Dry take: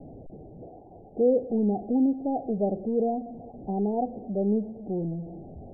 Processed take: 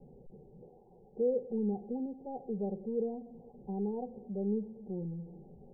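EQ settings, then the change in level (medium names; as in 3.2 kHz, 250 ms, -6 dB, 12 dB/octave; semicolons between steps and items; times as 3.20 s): static phaser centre 440 Hz, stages 8; -7.0 dB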